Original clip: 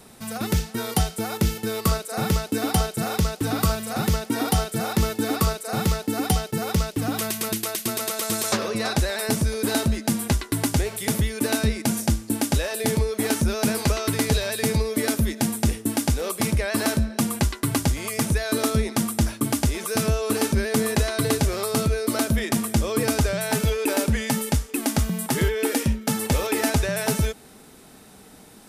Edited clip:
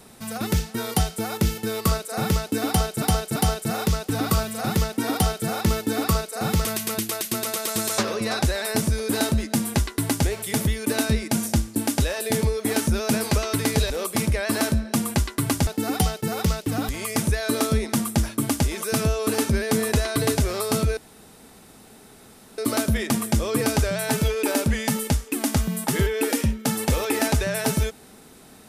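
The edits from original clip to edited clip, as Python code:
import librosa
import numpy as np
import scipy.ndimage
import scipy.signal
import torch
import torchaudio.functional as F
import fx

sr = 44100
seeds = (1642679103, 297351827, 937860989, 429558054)

y = fx.edit(x, sr, fx.repeat(start_s=2.68, length_s=0.34, count=3),
    fx.move(start_s=5.97, length_s=1.22, to_s=17.92),
    fx.cut(start_s=14.44, length_s=1.71),
    fx.insert_room_tone(at_s=22.0, length_s=1.61), tone=tone)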